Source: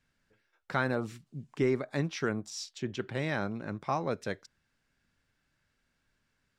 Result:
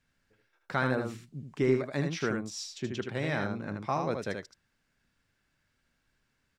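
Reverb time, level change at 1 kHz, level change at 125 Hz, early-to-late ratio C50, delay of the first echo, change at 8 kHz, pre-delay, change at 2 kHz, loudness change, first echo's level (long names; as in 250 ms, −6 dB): no reverb audible, +1.0 dB, +1.5 dB, no reverb audible, 78 ms, +1.0 dB, no reverb audible, +1.0 dB, +1.5 dB, −5.0 dB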